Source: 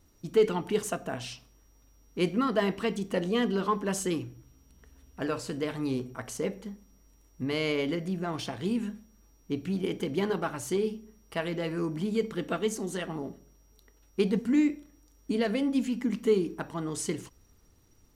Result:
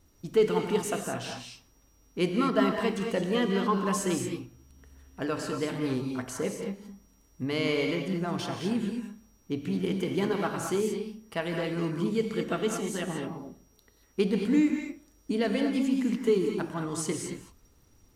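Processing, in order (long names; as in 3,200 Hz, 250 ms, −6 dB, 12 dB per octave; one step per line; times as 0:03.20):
reverb whose tail is shaped and stops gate 250 ms rising, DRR 3 dB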